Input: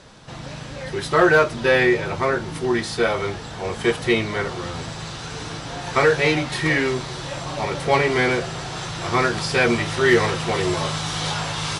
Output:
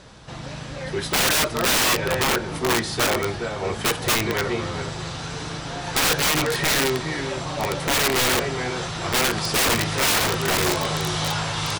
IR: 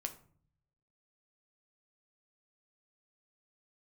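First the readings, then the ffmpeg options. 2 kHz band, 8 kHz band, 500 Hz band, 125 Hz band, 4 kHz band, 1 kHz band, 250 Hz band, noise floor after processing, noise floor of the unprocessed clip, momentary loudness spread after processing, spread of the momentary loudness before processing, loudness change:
-2.0 dB, +9.5 dB, -5.0 dB, -1.5 dB, +5.0 dB, -1.0 dB, -3.5 dB, -34 dBFS, -35 dBFS, 12 LU, 14 LU, -0.5 dB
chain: -filter_complex "[0:a]aeval=exprs='val(0)+0.002*(sin(2*PI*60*n/s)+sin(2*PI*2*60*n/s)/2+sin(2*PI*3*60*n/s)/3+sin(2*PI*4*60*n/s)/4+sin(2*PI*5*60*n/s)/5)':c=same,asplit=2[a][b];[b]adelay=414,volume=-9dB,highshelf=f=4k:g=-9.32[c];[a][c]amix=inputs=2:normalize=0,aeval=exprs='(mod(5.31*val(0)+1,2)-1)/5.31':c=same"

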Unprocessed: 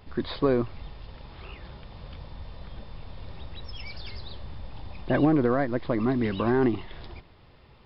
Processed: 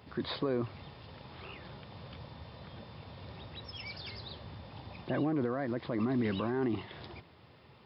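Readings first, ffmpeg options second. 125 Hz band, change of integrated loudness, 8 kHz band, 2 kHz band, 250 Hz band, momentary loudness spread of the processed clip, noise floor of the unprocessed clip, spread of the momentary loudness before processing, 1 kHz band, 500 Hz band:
-7.5 dB, -10.0 dB, n/a, -7.5 dB, -8.0 dB, 17 LU, -54 dBFS, 21 LU, -8.5 dB, -9.0 dB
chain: -af "alimiter=limit=-22dB:level=0:latency=1:release=33,highpass=f=89:w=0.5412,highpass=f=89:w=1.3066,volume=-1.5dB"

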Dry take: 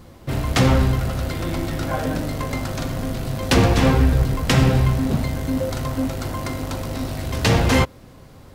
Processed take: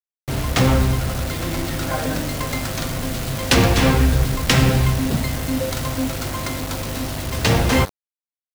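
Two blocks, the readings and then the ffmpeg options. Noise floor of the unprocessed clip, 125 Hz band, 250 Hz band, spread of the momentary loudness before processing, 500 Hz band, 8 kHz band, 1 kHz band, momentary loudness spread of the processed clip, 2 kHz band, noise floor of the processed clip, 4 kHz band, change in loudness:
-44 dBFS, 0.0 dB, 0.0 dB, 11 LU, 0.0 dB, +5.5 dB, +1.0 dB, 10 LU, +2.5 dB, under -85 dBFS, +3.5 dB, +0.5 dB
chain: -filter_complex "[0:a]bandreject=f=93.06:t=h:w=4,bandreject=f=186.12:t=h:w=4,bandreject=f=279.18:t=h:w=4,bandreject=f=372.24:t=h:w=4,acrossover=split=210|1500[a][b][c];[c]dynaudnorm=f=200:g=17:m=5.5dB[d];[a][b][d]amix=inputs=3:normalize=0,acrusher=bits=4:mix=0:aa=0.000001"

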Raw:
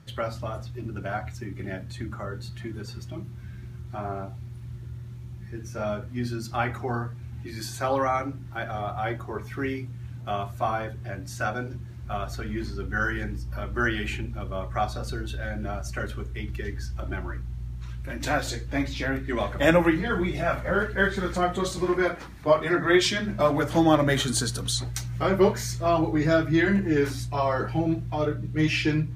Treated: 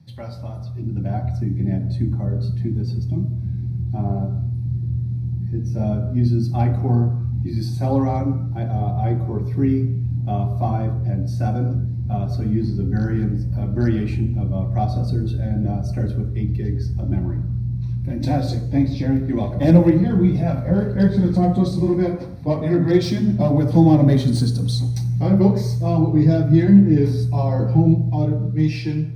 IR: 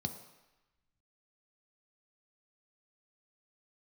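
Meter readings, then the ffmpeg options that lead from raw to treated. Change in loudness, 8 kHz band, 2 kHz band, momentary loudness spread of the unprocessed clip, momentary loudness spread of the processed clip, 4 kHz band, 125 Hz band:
+7.5 dB, n/a, -11.0 dB, 15 LU, 9 LU, -4.5 dB, +13.5 dB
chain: -filter_complex "[0:a]highshelf=f=5.1k:g=4.5,acrossover=split=550[a][b];[a]dynaudnorm=f=110:g=17:m=12dB[c];[b]asoftclip=type=hard:threshold=-19.5dB[d];[c][d]amix=inputs=2:normalize=0[e];[1:a]atrim=start_sample=2205,afade=t=out:st=0.35:d=0.01,atrim=end_sample=15876[f];[e][f]afir=irnorm=-1:irlink=0,volume=-8dB"

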